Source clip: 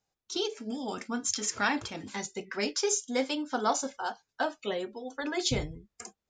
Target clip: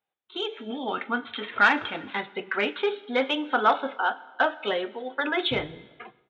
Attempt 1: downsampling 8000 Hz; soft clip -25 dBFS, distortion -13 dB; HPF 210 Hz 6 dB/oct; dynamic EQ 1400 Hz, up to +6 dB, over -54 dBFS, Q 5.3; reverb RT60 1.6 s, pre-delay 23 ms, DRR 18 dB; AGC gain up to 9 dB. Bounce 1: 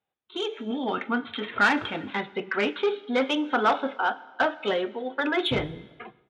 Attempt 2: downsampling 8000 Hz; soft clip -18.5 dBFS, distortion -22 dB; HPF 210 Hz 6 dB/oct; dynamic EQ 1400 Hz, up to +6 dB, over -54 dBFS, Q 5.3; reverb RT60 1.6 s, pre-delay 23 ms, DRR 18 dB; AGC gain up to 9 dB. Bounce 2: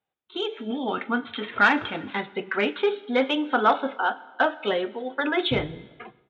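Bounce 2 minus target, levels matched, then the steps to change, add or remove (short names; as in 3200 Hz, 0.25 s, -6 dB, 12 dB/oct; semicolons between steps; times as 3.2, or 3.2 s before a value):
250 Hz band +3.0 dB
change: HPF 520 Hz 6 dB/oct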